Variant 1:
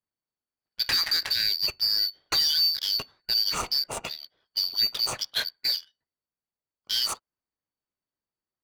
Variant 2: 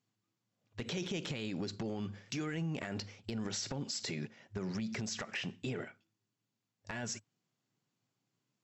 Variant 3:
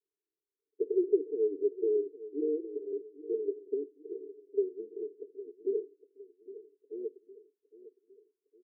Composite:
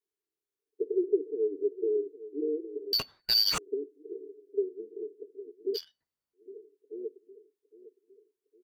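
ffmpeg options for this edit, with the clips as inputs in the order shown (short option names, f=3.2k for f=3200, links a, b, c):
-filter_complex "[0:a]asplit=2[a][b];[2:a]asplit=3[c][d][e];[c]atrim=end=2.932[f];[a]atrim=start=2.928:end=3.582[g];[d]atrim=start=3.578:end=5.78[h];[b]atrim=start=5.74:end=6.37[i];[e]atrim=start=6.33[j];[f][g]acrossfade=d=0.004:c1=hsin:c2=hsin[k];[k][h]acrossfade=d=0.004:c1=hsin:c2=hsin[l];[l][i]acrossfade=d=0.04:c1=tri:c2=tri[m];[m][j]acrossfade=d=0.04:c1=tri:c2=tri"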